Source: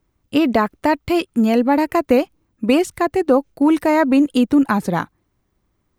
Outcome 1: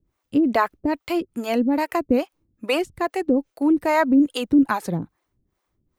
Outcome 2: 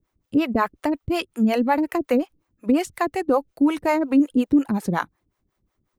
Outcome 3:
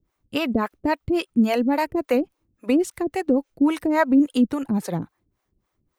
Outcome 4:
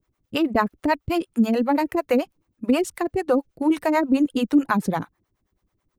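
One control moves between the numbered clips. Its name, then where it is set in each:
harmonic tremolo, rate: 2.4, 5.5, 3.6, 9.2 Hz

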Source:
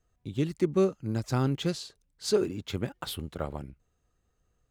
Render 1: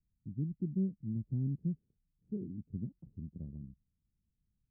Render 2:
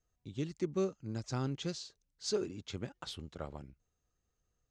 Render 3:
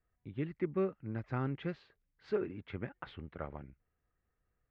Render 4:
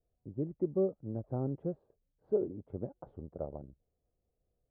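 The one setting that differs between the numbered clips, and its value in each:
ladder low-pass, frequency: 240, 7400, 2400, 730 Hz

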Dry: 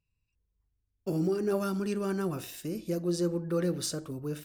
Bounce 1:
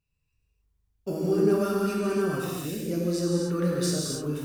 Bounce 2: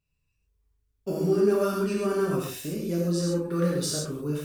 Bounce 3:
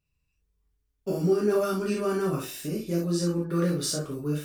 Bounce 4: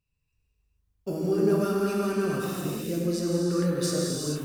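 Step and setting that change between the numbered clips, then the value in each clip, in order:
non-linear reverb, gate: 320, 160, 90, 480 ms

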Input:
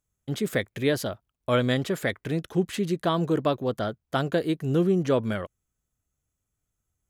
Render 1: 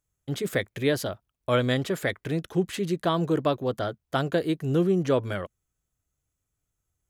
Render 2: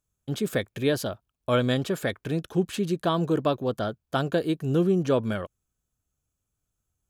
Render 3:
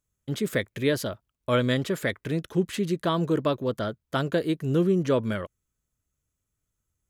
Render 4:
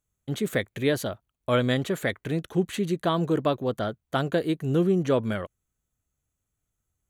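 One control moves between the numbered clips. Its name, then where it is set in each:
notch, frequency: 220, 2000, 750, 5100 Hz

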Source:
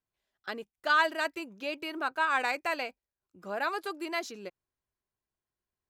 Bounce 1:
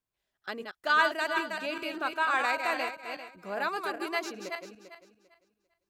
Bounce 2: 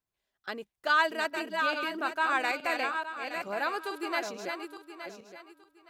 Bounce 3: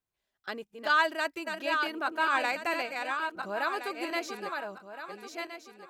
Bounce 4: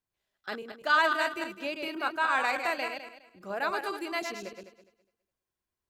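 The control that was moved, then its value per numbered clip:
regenerating reverse delay, time: 0.198, 0.434, 0.684, 0.103 s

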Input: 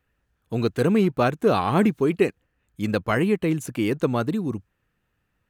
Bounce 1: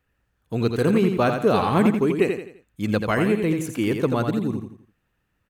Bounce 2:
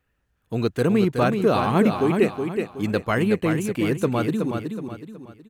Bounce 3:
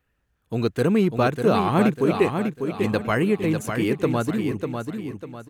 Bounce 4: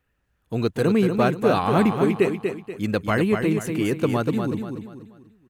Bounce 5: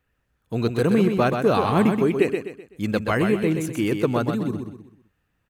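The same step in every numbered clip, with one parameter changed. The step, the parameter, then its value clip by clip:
feedback echo, time: 85, 371, 597, 241, 127 ms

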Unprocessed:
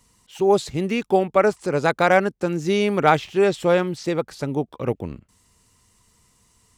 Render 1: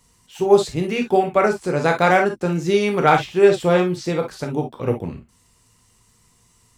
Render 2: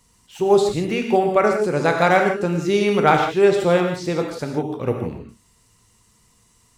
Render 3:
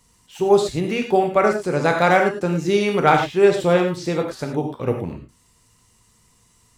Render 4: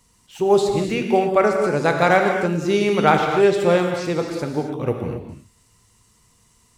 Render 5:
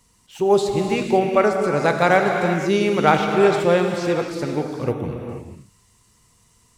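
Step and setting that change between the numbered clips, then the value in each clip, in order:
non-linear reverb, gate: 80, 190, 130, 300, 520 ms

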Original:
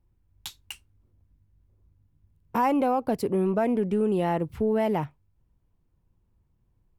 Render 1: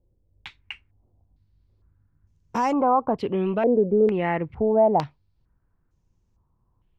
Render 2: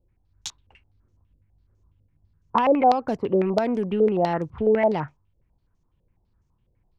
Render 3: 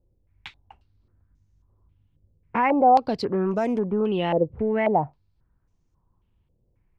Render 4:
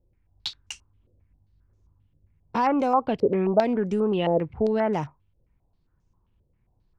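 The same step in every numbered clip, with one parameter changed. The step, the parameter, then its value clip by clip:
stepped low-pass, rate: 2.2, 12, 3.7, 7.5 Hz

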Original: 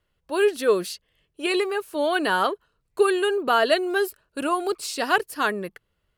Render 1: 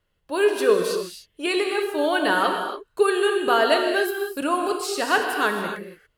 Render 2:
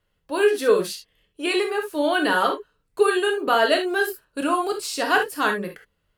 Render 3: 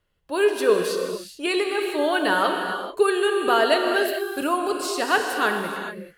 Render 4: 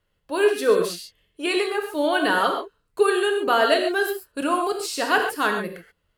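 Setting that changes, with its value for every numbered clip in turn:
non-linear reverb, gate: 310, 90, 460, 160 ms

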